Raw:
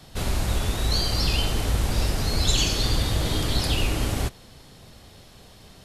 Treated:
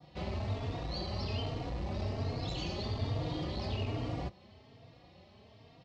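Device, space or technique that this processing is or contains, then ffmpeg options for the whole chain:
barber-pole flanger into a guitar amplifier: -filter_complex "[0:a]asplit=2[link_01][link_02];[link_02]adelay=3.7,afreqshift=1.2[link_03];[link_01][link_03]amix=inputs=2:normalize=1,asoftclip=type=tanh:threshold=-19dB,highpass=91,equalizer=frequency=91:width_type=q:width=4:gain=6,equalizer=frequency=650:width_type=q:width=4:gain=4,equalizer=frequency=1500:width_type=q:width=4:gain=-10,equalizer=frequency=3500:width_type=q:width=4:gain=-6,lowpass=frequency=4100:width=0.5412,lowpass=frequency=4100:width=1.3066,adynamicequalizer=threshold=0.00282:dfrequency=2600:dqfactor=1.1:tfrequency=2600:tqfactor=1.1:attack=5:release=100:ratio=0.375:range=2.5:mode=cutabove:tftype=bell,volume=-4.5dB"

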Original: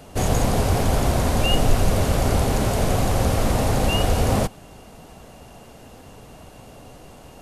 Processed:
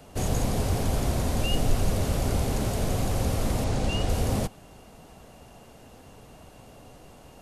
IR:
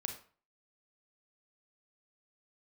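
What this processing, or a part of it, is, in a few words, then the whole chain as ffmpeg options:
one-band saturation: -filter_complex "[0:a]acrossover=split=480|3000[link_01][link_02][link_03];[link_02]asoftclip=type=tanh:threshold=-29dB[link_04];[link_01][link_04][link_03]amix=inputs=3:normalize=0,asettb=1/sr,asplit=3[link_05][link_06][link_07];[link_05]atrim=end=3.644[link_08];[link_06]atrim=start=3.64:end=4.09,asetpts=PTS-STARTPTS,afade=type=in:duration=0.004:curve=qsin,afade=type=out:start_time=0.446:duration=0.004:curve=qsin,lowpass=7800[link_09];[link_07]atrim=start=4.086[link_10];[link_08][link_09]acrossfade=duration=0.004:curve1=hsin:curve2=qsin[link_11];[link_11][link_10]acrossfade=duration=0.004:curve1=qsin:curve2=hsin,volume=-5.5dB"

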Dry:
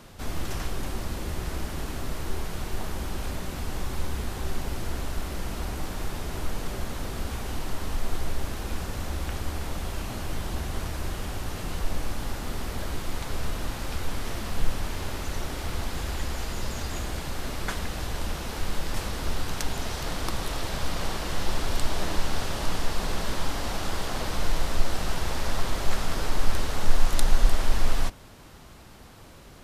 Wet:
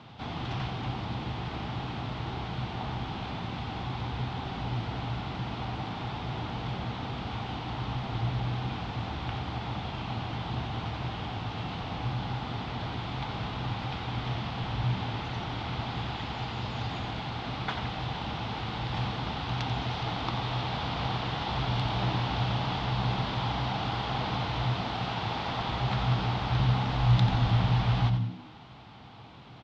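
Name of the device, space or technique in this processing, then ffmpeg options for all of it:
frequency-shifting delay pedal into a guitar cabinet: -filter_complex "[0:a]asettb=1/sr,asplit=3[link_01][link_02][link_03];[link_01]atrim=end=24.504[link_04];[link_02]atrim=start=24.5:end=25.61,asetpts=PTS-STARTPTS,afade=type=in:duration=0.004:curve=qsin,afade=type=out:start_time=1.106:duration=0.004:curve=qsin,highpass=frequency=57:poles=1[link_05];[link_03]atrim=start=25.606[link_06];[link_04][link_05]acrossfade=duration=0.004:curve1=hsin:curve2=qsin[link_07];[link_07][link_06]acrossfade=duration=0.004:curve1=qsin:curve2=hsin,acrossover=split=8700[link_08][link_09];[link_09]acompressor=threshold=-54dB:ratio=4:attack=1:release=60[link_10];[link_08][link_10]amix=inputs=2:normalize=0,asplit=6[link_11][link_12][link_13][link_14][link_15][link_16];[link_12]adelay=89,afreqshift=-66,volume=-9dB[link_17];[link_13]adelay=178,afreqshift=-132,volume=-16.3dB[link_18];[link_14]adelay=267,afreqshift=-198,volume=-23.7dB[link_19];[link_15]adelay=356,afreqshift=-264,volume=-31dB[link_20];[link_16]adelay=445,afreqshift=-330,volume=-38.3dB[link_21];[link_11][link_17][link_18][link_19][link_20][link_21]amix=inputs=6:normalize=0,highpass=110,equalizer=frequency=120:width_type=q:width=4:gain=9,equalizer=frequency=380:width_type=q:width=4:gain=-5,equalizer=frequency=550:width_type=q:width=4:gain=-7,equalizer=frequency=810:width_type=q:width=4:gain=7,equalizer=frequency=1700:width_type=q:width=4:gain=-5,equalizer=frequency=3400:width_type=q:width=4:gain=4,lowpass=frequency=4000:width=0.5412,lowpass=frequency=4000:width=1.3066"

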